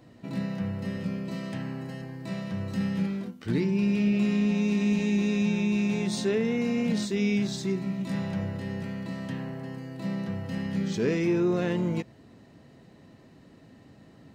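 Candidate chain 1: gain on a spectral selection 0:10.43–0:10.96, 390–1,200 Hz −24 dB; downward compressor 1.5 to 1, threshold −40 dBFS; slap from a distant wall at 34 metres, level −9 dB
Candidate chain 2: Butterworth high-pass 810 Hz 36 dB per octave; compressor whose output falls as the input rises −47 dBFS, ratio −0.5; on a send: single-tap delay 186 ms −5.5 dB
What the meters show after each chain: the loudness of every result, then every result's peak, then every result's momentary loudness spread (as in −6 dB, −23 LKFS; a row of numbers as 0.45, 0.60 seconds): −33.5, −44.5 LKFS; −21.0, −26.5 dBFS; 22, 17 LU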